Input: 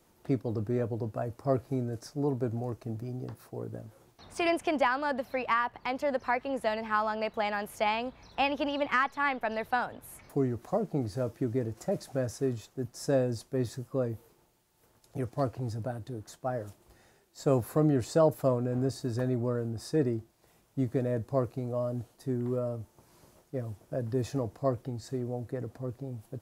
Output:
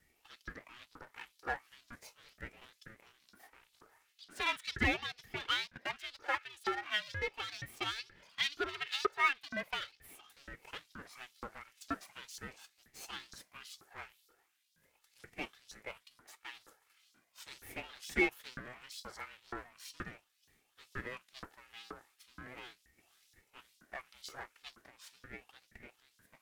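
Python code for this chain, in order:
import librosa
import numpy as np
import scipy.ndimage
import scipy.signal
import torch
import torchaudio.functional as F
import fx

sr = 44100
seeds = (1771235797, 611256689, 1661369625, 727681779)

y = fx.lower_of_two(x, sr, delay_ms=2.3)
y = fx.filter_lfo_highpass(y, sr, shape='saw_up', hz=2.1, low_hz=790.0, high_hz=4800.0, q=3.9)
y = fx.ring_lfo(y, sr, carrier_hz=700.0, swing_pct=40, hz=0.39)
y = y * librosa.db_to_amplitude(-3.5)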